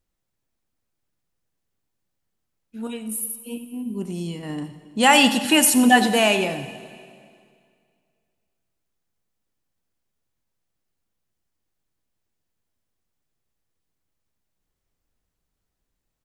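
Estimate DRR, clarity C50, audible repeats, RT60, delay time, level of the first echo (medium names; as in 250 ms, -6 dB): 10.0 dB, 11.0 dB, 1, 2.2 s, 89 ms, -15.0 dB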